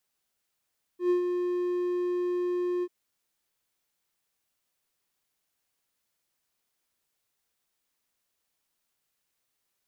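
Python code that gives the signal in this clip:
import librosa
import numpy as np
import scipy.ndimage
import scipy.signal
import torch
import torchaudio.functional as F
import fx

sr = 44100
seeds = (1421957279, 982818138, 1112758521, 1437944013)

y = fx.adsr_tone(sr, wave='triangle', hz=356.0, attack_ms=110.0, decay_ms=112.0, sustain_db=-6.0, held_s=1.84, release_ms=49.0, level_db=-18.0)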